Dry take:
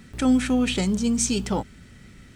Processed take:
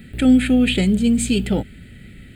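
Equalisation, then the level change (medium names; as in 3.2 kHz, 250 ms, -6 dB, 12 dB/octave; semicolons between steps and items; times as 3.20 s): static phaser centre 2.5 kHz, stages 4; +7.0 dB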